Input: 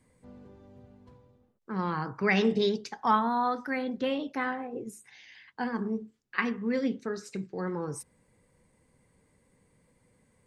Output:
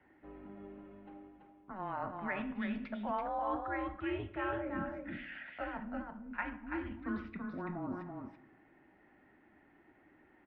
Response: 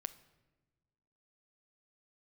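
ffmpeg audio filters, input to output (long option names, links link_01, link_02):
-filter_complex "[0:a]areverse,acompressor=threshold=-39dB:ratio=12,areverse,aecho=1:1:333:0.596[link_01];[1:a]atrim=start_sample=2205,asetrate=42336,aresample=44100[link_02];[link_01][link_02]afir=irnorm=-1:irlink=0,highpass=frequency=380:width_type=q:width=0.5412,highpass=frequency=380:width_type=q:width=1.307,lowpass=frequency=2900:width_type=q:width=0.5176,lowpass=frequency=2900:width_type=q:width=0.7071,lowpass=frequency=2900:width_type=q:width=1.932,afreqshift=-190,volume=9dB"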